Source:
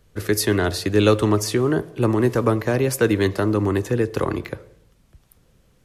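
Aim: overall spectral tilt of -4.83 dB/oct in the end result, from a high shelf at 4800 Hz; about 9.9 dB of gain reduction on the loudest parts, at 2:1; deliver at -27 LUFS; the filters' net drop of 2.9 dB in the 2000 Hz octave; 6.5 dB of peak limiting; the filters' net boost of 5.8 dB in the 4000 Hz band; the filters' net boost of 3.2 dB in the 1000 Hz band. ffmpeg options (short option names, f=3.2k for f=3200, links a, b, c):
-af "equalizer=f=1k:t=o:g=6,equalizer=f=2k:t=o:g=-9,equalizer=f=4k:t=o:g=5,highshelf=f=4.8k:g=7.5,acompressor=threshold=-30dB:ratio=2,volume=3dB,alimiter=limit=-16dB:level=0:latency=1"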